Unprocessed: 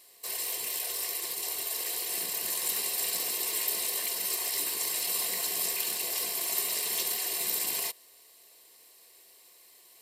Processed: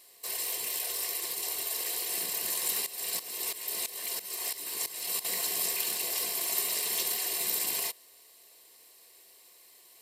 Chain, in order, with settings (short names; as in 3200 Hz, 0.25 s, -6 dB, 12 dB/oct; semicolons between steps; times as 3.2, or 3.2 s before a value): 2.86–5.25 tremolo saw up 3 Hz, depth 85%